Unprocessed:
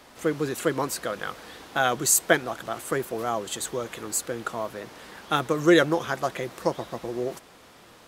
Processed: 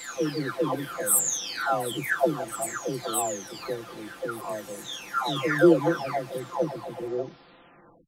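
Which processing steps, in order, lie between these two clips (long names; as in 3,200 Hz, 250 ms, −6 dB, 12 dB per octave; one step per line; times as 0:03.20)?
every frequency bin delayed by itself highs early, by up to 992 ms
level +1 dB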